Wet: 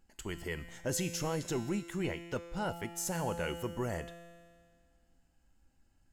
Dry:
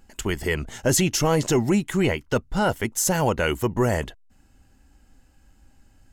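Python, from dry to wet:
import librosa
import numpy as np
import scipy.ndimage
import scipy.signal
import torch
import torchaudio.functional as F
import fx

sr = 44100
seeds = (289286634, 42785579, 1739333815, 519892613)

y = fx.comb_fb(x, sr, f0_hz=170.0, decay_s=1.9, harmonics='all', damping=0.0, mix_pct=80)
y = F.gain(torch.from_numpy(y), -1.0).numpy()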